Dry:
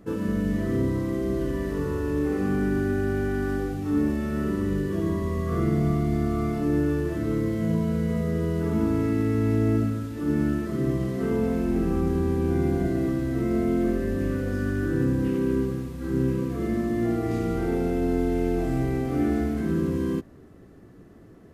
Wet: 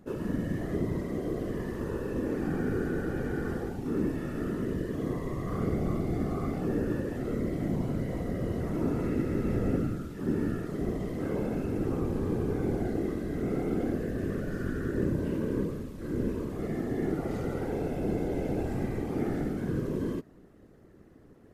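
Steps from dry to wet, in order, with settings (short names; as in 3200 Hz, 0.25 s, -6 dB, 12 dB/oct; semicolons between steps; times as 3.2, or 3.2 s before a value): whisperiser; gain -6 dB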